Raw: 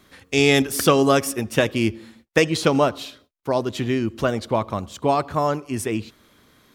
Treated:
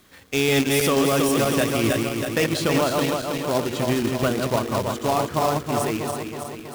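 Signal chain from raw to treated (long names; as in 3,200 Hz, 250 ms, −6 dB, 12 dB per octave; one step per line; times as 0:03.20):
feedback delay that plays each chunk backwards 161 ms, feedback 76%, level −4.5 dB
brickwall limiter −8.5 dBFS, peak gain reduction 6 dB
log-companded quantiser 4 bits
level −2.5 dB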